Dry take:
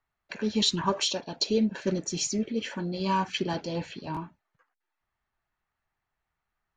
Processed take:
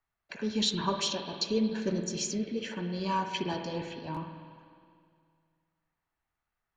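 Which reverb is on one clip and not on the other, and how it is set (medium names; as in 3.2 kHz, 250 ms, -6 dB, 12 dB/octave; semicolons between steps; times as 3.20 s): spring tank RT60 2.2 s, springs 50/56 ms, chirp 25 ms, DRR 6 dB; trim -4 dB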